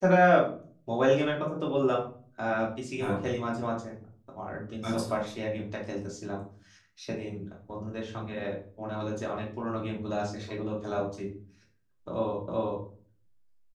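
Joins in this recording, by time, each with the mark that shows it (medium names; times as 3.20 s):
12.48 s: repeat of the last 0.38 s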